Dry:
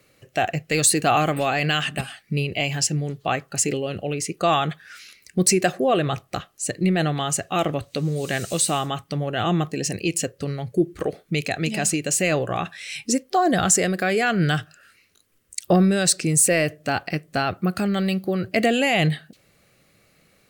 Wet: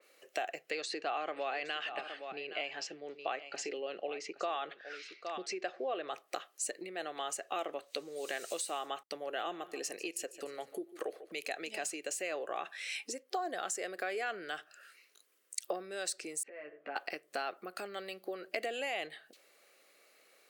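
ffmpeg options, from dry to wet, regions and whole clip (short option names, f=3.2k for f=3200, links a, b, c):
-filter_complex "[0:a]asettb=1/sr,asplit=3[a][b][c];[a]atrim=end=0.704[d];[b]atrim=start=0.7:end=6.09,asetpts=PTS-STARTPTS,afade=t=in:d=0.004:c=qsin,afade=t=out:st=5.386:d=0.004:c=qsin,lowpass=f=5.2k:w=0.5412,lowpass=f=5.2k:w=1.3066,aecho=1:1:817:0.15,atrim=end_sample=237699[e];[c]atrim=start=6.086[f];[d][e]acrossfade=d=0.004:c1=hsin:c2=qsin[g];[g][f]acrossfade=d=0.004:c1=qsin:c2=hsin,asettb=1/sr,asplit=3[h][i][j];[h]atrim=end=9.034[k];[i]atrim=start=9.03:end=11.53,asetpts=PTS-STARTPTS,afade=t=in:d=0.004:c=qsin,afade=t=out:st=2.496:d=0.004:c=qsin,equalizer=f=12k:w=2.9:g=10,agate=range=-33dB:threshold=-43dB:ratio=3:release=100:detection=peak,aecho=1:1:146|292|438:0.112|0.0494|0.0217,atrim=end_sample=110250[l];[j]atrim=start=11.526[m];[k][l]acrossfade=d=0.004:c1=hsin:c2=qsin[n];[n][m]acrossfade=d=0.004:c1=qsin:c2=hsin,asettb=1/sr,asplit=3[o][p][q];[o]atrim=end=16.434[r];[p]atrim=start=16.43:end=16.96,asetpts=PTS-STARTPTS,afade=t=in:d=0.004:c=qsin,afade=t=out:st=0.526:d=0.004:c=qsin,lowpass=f=2.2k:w=0.5412,lowpass=f=2.2k:w=1.3066,acompressor=threshold=-33dB:ratio=16:attack=3.2:release=140:knee=1:detection=peak,asplit=2[s][t];[t]adelay=14,volume=-2.5dB[u];[s][u]amix=inputs=2:normalize=0,atrim=end_sample=23373[v];[q]atrim=start=16.956[w];[r][v]acrossfade=d=0.004:c1=hsin:c2=qsin[x];[x][w]acrossfade=d=0.004:c1=qsin:c2=hsin,acompressor=threshold=-29dB:ratio=6,highpass=f=380:w=0.5412,highpass=f=380:w=1.3066,adynamicequalizer=threshold=0.00398:dfrequency=3200:dqfactor=0.7:tfrequency=3200:tqfactor=0.7:attack=5:release=100:ratio=0.375:range=2:mode=cutabove:tftype=highshelf,volume=-4dB"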